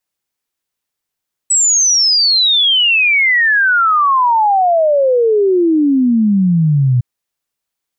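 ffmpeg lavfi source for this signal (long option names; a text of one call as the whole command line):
ffmpeg -f lavfi -i "aevalsrc='0.376*clip(min(t,5.51-t)/0.01,0,1)*sin(2*PI*8000*5.51/log(120/8000)*(exp(log(120/8000)*t/5.51)-1))':duration=5.51:sample_rate=44100" out.wav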